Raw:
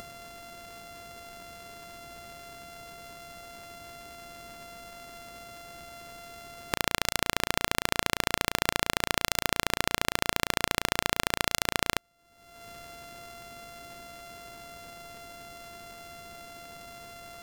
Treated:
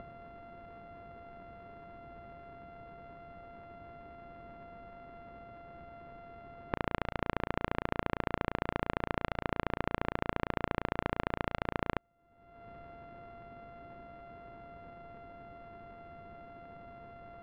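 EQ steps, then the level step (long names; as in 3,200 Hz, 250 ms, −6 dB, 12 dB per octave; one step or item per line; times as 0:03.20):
high-frequency loss of the air 470 metres
high-shelf EQ 2,300 Hz −12 dB
high-shelf EQ 9,000 Hz −10.5 dB
0.0 dB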